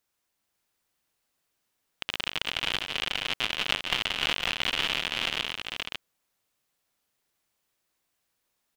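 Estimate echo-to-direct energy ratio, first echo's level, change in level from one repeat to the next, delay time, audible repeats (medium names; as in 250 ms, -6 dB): -2.5 dB, -9.0 dB, no regular repeats, 177 ms, 3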